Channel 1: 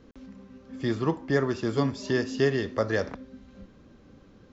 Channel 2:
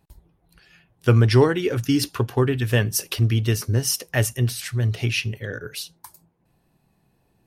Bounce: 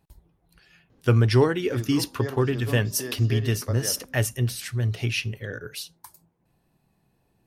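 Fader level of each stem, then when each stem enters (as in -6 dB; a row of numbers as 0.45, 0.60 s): -9.0, -3.0 dB; 0.90, 0.00 s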